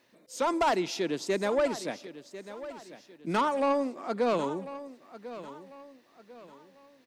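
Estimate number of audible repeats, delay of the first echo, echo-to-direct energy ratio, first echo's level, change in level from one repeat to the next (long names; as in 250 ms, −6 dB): 3, 1,046 ms, −14.0 dB, −14.5 dB, −8.5 dB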